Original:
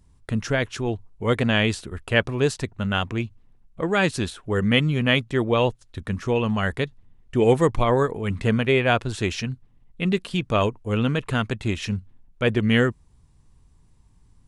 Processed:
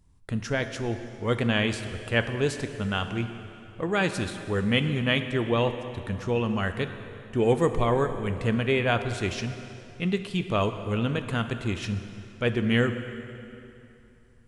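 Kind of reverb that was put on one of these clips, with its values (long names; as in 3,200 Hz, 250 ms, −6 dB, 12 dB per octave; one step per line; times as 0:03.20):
dense smooth reverb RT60 2.9 s, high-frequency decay 0.85×, DRR 8 dB
level −4.5 dB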